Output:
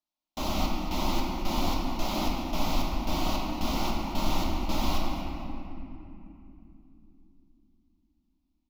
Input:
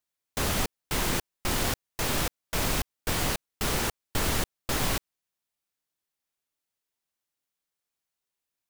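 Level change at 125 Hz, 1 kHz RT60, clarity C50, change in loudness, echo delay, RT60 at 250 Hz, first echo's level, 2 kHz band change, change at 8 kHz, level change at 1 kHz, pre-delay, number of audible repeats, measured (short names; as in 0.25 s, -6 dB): -1.0 dB, 2.6 s, -0.5 dB, -2.0 dB, 0.23 s, 4.9 s, -12.0 dB, -7.0 dB, -10.0 dB, +3.0 dB, 6 ms, 1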